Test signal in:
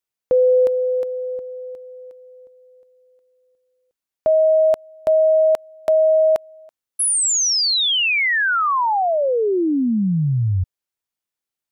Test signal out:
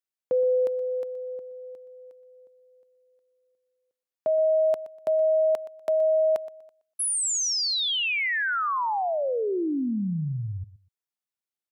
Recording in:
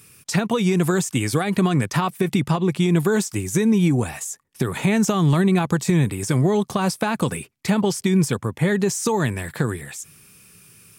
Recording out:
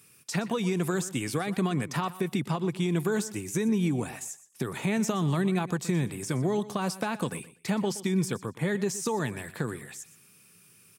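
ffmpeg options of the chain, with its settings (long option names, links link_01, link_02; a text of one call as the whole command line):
ffmpeg -i in.wav -af "highpass=130,aecho=1:1:122|244:0.15|0.0344,volume=-8dB" out.wav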